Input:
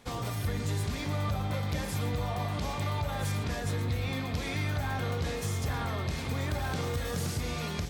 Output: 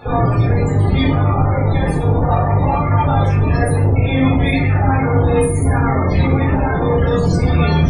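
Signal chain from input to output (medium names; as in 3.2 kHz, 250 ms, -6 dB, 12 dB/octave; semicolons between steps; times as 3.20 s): 3.42–5.73 s: peaking EQ 10 kHz +13 dB 0.39 oct; fuzz box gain 54 dB, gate -55 dBFS; loudest bins only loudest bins 32; simulated room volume 490 m³, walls furnished, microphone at 4.1 m; trim -7 dB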